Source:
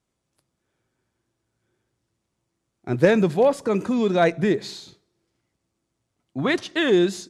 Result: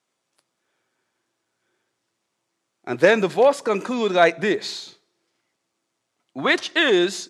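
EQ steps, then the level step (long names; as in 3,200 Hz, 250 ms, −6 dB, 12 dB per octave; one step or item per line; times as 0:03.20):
meter weighting curve A
+5.0 dB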